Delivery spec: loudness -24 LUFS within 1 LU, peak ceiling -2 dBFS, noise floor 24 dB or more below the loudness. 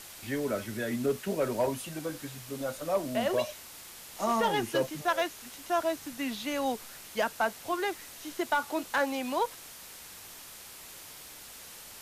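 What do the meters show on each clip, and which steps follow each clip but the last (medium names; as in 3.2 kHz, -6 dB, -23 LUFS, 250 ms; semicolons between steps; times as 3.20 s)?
clipped samples 0.3%; clipping level -20.0 dBFS; noise floor -48 dBFS; noise floor target -56 dBFS; loudness -32.0 LUFS; peak level -20.0 dBFS; loudness target -24.0 LUFS
-> clip repair -20 dBFS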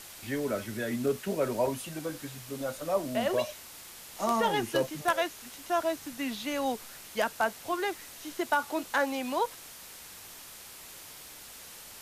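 clipped samples 0.0%; noise floor -48 dBFS; noise floor target -56 dBFS
-> noise reduction 8 dB, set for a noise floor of -48 dBFS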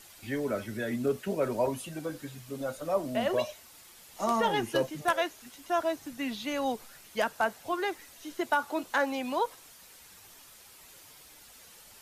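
noise floor -54 dBFS; noise floor target -56 dBFS
-> noise reduction 6 dB, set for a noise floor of -54 dBFS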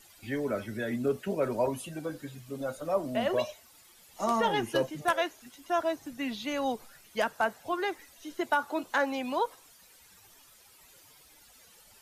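noise floor -58 dBFS; loudness -31.5 LUFS; peak level -11.5 dBFS; loudness target -24.0 LUFS
-> trim +7.5 dB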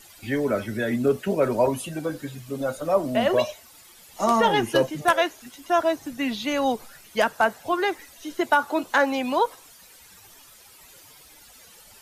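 loudness -24.0 LUFS; peak level -4.0 dBFS; noise floor -51 dBFS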